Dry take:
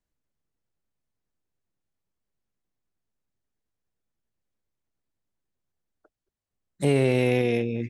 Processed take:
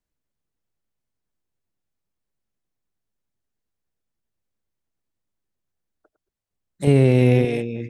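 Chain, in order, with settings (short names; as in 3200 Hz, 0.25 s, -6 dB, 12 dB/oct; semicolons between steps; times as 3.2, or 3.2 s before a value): reverse delay 0.555 s, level -12.5 dB; 6.87–7.45 low shelf 310 Hz +11.5 dB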